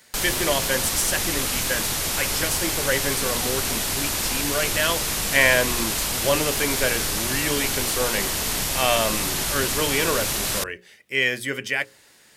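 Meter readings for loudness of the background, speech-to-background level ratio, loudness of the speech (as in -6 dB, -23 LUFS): -23.0 LUFS, -2.5 dB, -25.5 LUFS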